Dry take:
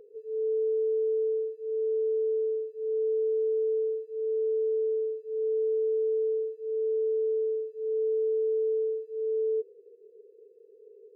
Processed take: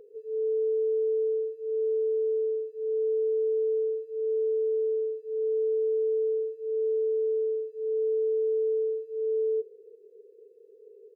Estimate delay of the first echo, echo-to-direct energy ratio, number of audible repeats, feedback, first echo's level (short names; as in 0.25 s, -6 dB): 0.172 s, -22.0 dB, 2, 49%, -23.0 dB